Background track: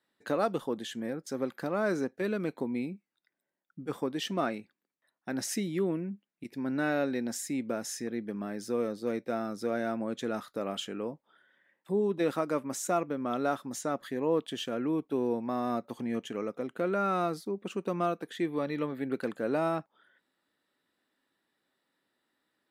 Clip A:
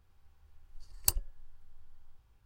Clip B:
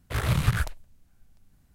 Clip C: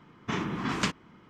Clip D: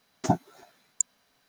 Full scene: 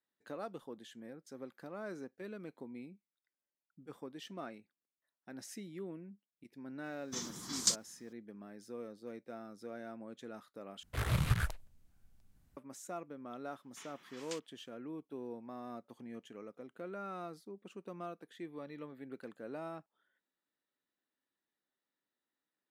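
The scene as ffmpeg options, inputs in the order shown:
ffmpeg -i bed.wav -i cue0.wav -i cue1.wav -i cue2.wav -filter_complex "[3:a]asplit=2[link_01][link_02];[0:a]volume=-14.5dB[link_03];[link_01]aexciter=amount=15.9:drive=7.4:freq=4100[link_04];[link_02]aderivative[link_05];[link_03]asplit=2[link_06][link_07];[link_06]atrim=end=10.834[link_08];[2:a]atrim=end=1.74,asetpts=PTS-STARTPTS,volume=-7.5dB[link_09];[link_07]atrim=start=12.566[link_10];[link_04]atrim=end=1.29,asetpts=PTS-STARTPTS,volume=-17.5dB,afade=type=in:duration=0.004:curve=hsin,afade=type=out:start_time=1.286:duration=0.004:curve=hsin,adelay=6840[link_11];[link_05]atrim=end=1.29,asetpts=PTS-STARTPTS,volume=-9.5dB,afade=type=in:duration=0.004:curve=hsin,afade=type=out:start_time=1.286:duration=0.004:curve=hsin,adelay=594468S[link_12];[link_08][link_09]acrossfade=duration=0.004:curve1=hsin:curve2=hsin[link_13];[link_13][link_10]acrossfade=duration=0.004:curve1=hsin:curve2=hsin[link_14];[link_14][link_11][link_12]amix=inputs=3:normalize=0" out.wav

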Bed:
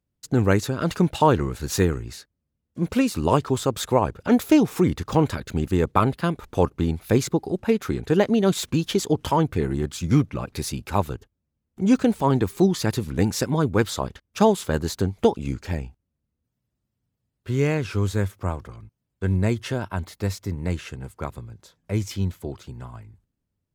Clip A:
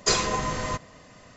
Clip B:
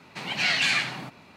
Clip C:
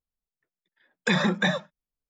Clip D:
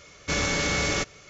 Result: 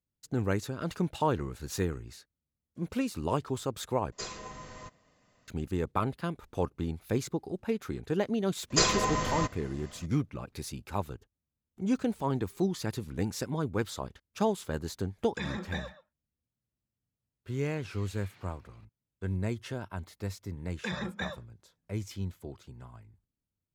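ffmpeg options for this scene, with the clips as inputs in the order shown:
ffmpeg -i bed.wav -i cue0.wav -i cue1.wav -i cue2.wav -filter_complex "[1:a]asplit=2[link_01][link_02];[3:a]asplit=2[link_03][link_04];[0:a]volume=-10.5dB[link_05];[link_03]asplit=2[link_06][link_07];[link_07]adelay=130,highpass=300,lowpass=3400,asoftclip=type=hard:threshold=-20dB,volume=-13dB[link_08];[link_06][link_08]amix=inputs=2:normalize=0[link_09];[2:a]acompressor=threshold=-39dB:ratio=6:attack=3.2:release=140:knee=1:detection=peak[link_10];[link_05]asplit=2[link_11][link_12];[link_11]atrim=end=4.124[link_13];[link_01]atrim=end=1.36,asetpts=PTS-STARTPTS,volume=-17dB[link_14];[link_12]atrim=start=5.476[link_15];[link_02]atrim=end=1.36,asetpts=PTS-STARTPTS,volume=-2dB,afade=type=in:duration=0.004:curve=hsin,afade=type=out:start_time=1.356:duration=0.004:curve=hsin,adelay=8700[link_16];[link_09]atrim=end=2.09,asetpts=PTS-STARTPTS,volume=-14dB,afade=type=in:duration=0.004:curve=hsin,afade=type=out:start_time=2.086:duration=0.004:curve=hsin,adelay=14300[link_17];[link_10]atrim=end=1.36,asetpts=PTS-STARTPTS,volume=-16.5dB,afade=type=in:duration=0.004:curve=hsin,afade=type=out:start_time=1.356:duration=0.004:curve=hsin,adelay=17490[link_18];[link_04]atrim=end=2.09,asetpts=PTS-STARTPTS,volume=-12.5dB,afade=type=in:duration=0.004:curve=hsin,afade=type=out:start_time=2.086:duration=0.004:curve=hsin,adelay=19770[link_19];[link_13][link_14]acrossfade=duration=0.004:curve1=hsin:curve2=hsin[link_20];[link_20][link_15]acrossfade=duration=0.004:curve1=hsin:curve2=hsin[link_21];[link_21][link_16][link_17][link_18][link_19]amix=inputs=5:normalize=0" out.wav

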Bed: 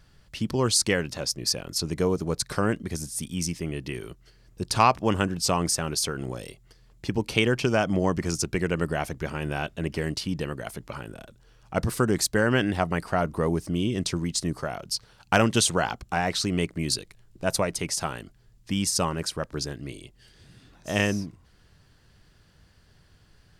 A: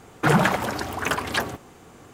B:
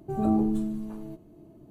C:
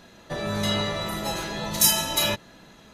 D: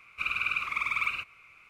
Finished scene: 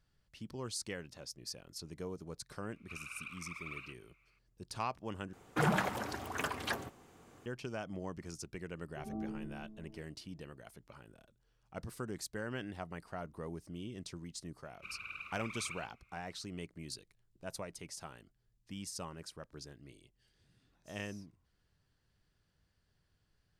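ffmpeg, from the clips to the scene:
ffmpeg -i bed.wav -i cue0.wav -i cue1.wav -i cue2.wav -i cue3.wav -filter_complex "[4:a]asplit=2[link_01][link_02];[0:a]volume=-18.5dB[link_03];[2:a]lowpass=1000[link_04];[link_02]lowshelf=frequency=380:gain=6.5[link_05];[link_03]asplit=2[link_06][link_07];[link_06]atrim=end=5.334[link_08];[1:a]atrim=end=2.13,asetpts=PTS-STARTPTS,volume=-12dB[link_09];[link_07]atrim=start=7.456[link_10];[link_01]atrim=end=1.69,asetpts=PTS-STARTPTS,volume=-17dB,afade=type=in:duration=0.004:curve=hsin,afade=type=out:start_time=1.686:duration=0.004:curve=hsin,adelay=2700[link_11];[link_04]atrim=end=1.7,asetpts=PTS-STARTPTS,volume=-17.5dB,afade=type=in:duration=0.004:curve=hsin,afade=type=out:start_time=1.696:duration=0.004:curve=hsin,adelay=8880[link_12];[link_05]atrim=end=1.69,asetpts=PTS-STARTPTS,volume=-16.5dB,afade=type=in:duration=0.004:curve=hsin,afade=type=out:start_time=1.686:duration=0.004:curve=hsin,adelay=14640[link_13];[link_08][link_09]acrossfade=duration=0.004:curve1=hsin:curve2=hsin[link_14];[link_14][link_10]acrossfade=duration=0.004:curve1=hsin:curve2=hsin[link_15];[link_15][link_11][link_12][link_13]amix=inputs=4:normalize=0" out.wav

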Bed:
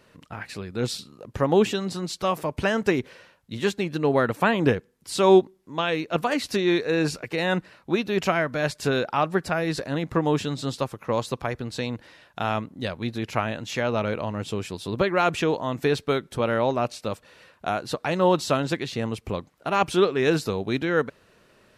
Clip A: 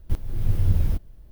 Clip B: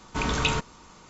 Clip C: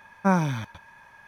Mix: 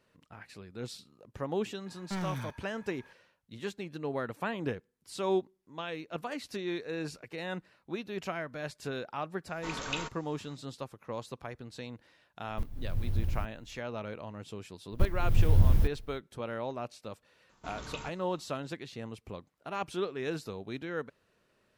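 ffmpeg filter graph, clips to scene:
ffmpeg -i bed.wav -i cue0.wav -i cue1.wav -i cue2.wav -filter_complex "[2:a]asplit=2[link_01][link_02];[1:a]asplit=2[link_03][link_04];[0:a]volume=-13.5dB[link_05];[3:a]asoftclip=type=hard:threshold=-24.5dB[link_06];[link_01]equalizer=frequency=85:width=0.41:gain=-14[link_07];[link_06]atrim=end=1.27,asetpts=PTS-STARTPTS,volume=-8dB,afade=type=in:duration=0.004:curve=hsin,afade=type=out:start_time=1.266:duration=0.004:curve=hsin,adelay=1860[link_08];[link_07]atrim=end=1.09,asetpts=PTS-STARTPTS,volume=-9.5dB,afade=type=in:duration=0.004:curve=hsin,afade=type=out:start_time=1.086:duration=0.004:curve=hsin,adelay=9480[link_09];[link_03]atrim=end=1.31,asetpts=PTS-STARTPTS,volume=-10.5dB,afade=type=in:duration=0.004:curve=hsin,afade=type=out:start_time=1.306:duration=0.004:curve=hsin,adelay=12480[link_10];[link_04]atrim=end=1.31,asetpts=PTS-STARTPTS,volume=-1.5dB,afade=type=in:duration=0.05,afade=type=out:start_time=1.26:duration=0.05,adelay=14900[link_11];[link_02]atrim=end=1.09,asetpts=PTS-STARTPTS,volume=-17.5dB,afade=type=in:duration=0.004:curve=hsin,afade=type=out:start_time=1.086:duration=0.004:curve=hsin,adelay=17490[link_12];[link_05][link_08][link_09][link_10][link_11][link_12]amix=inputs=6:normalize=0" out.wav

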